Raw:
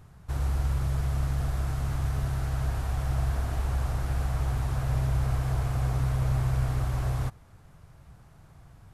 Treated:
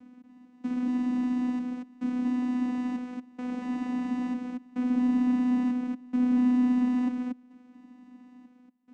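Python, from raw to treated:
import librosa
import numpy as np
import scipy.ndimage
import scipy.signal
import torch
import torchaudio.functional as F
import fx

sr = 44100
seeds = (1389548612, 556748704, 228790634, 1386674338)

y = fx.step_gate(x, sr, bpm=142, pattern='xx....xxxxxxx', floor_db=-24.0, edge_ms=4.5)
y = fx.vocoder(y, sr, bands=4, carrier='saw', carrier_hz=249.0)
y = y + 10.0 ** (-3.5 / 20.0) * np.pad(y, (int(234 * sr / 1000.0), 0))[:len(y)]
y = F.gain(torch.from_numpy(y), 4.0).numpy()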